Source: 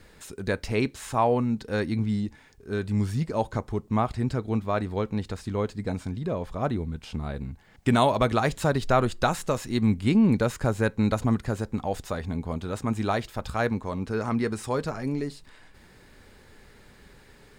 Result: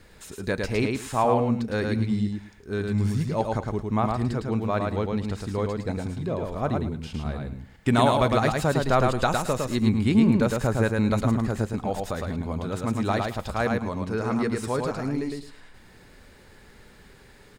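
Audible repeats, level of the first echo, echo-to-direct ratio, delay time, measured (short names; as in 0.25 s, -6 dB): 3, -3.5 dB, -3.5 dB, 0.108 s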